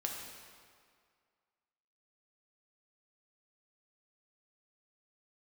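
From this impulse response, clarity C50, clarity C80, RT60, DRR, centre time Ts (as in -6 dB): 2.0 dB, 3.5 dB, 2.0 s, -0.5 dB, 74 ms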